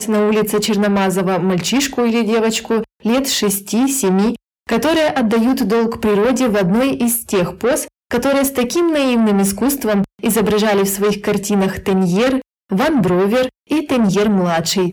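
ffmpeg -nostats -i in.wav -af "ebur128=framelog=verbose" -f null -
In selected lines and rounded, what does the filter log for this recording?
Integrated loudness:
  I:         -15.8 LUFS
  Threshold: -25.9 LUFS
Loudness range:
  LRA:         0.9 LU
  Threshold: -35.9 LUFS
  LRA low:   -16.3 LUFS
  LRA high:  -15.5 LUFS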